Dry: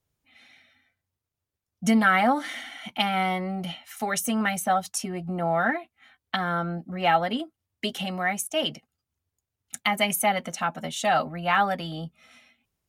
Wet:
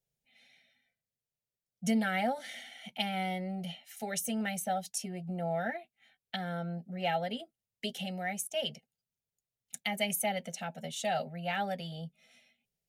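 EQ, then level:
phaser with its sweep stopped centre 300 Hz, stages 6
−6.0 dB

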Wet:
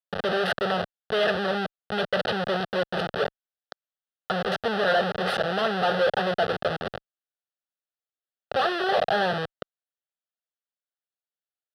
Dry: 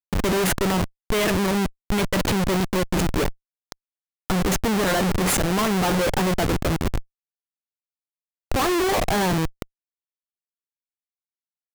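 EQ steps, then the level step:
band-pass filter 280–3,400 Hz
phaser with its sweep stopped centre 1,500 Hz, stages 8
+3.0 dB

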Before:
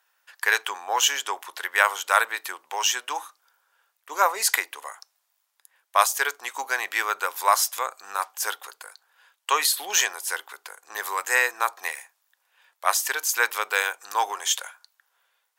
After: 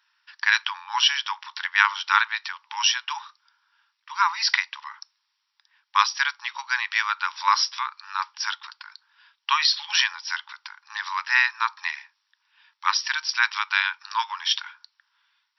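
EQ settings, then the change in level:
linear-phase brick-wall high-pass 830 Hz
linear-phase brick-wall low-pass 5,800 Hz
high-shelf EQ 2,800 Hz +9 dB
−1.0 dB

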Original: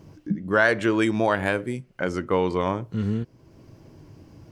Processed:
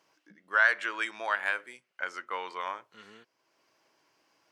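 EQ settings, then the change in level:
dynamic equaliser 1,500 Hz, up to +5 dB, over −36 dBFS, Q 1.1
high-pass filter 1,100 Hz 12 dB per octave
high-shelf EQ 7,800 Hz −6.5 dB
−5.0 dB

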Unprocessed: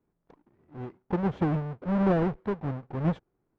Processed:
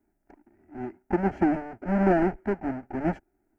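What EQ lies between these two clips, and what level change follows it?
phaser with its sweep stopped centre 730 Hz, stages 8
+7.0 dB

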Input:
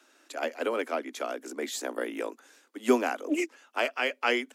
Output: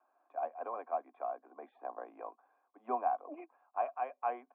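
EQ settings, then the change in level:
formant resonators in series a
parametric band 1,600 Hz +11.5 dB 0.24 octaves
+4.5 dB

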